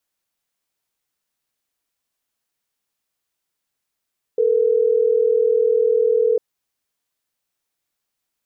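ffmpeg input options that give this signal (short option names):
-f lavfi -i "aevalsrc='0.15*(sin(2*PI*440*t)+sin(2*PI*480*t))*clip(min(mod(t,6),2-mod(t,6))/0.005,0,1)':d=3.12:s=44100"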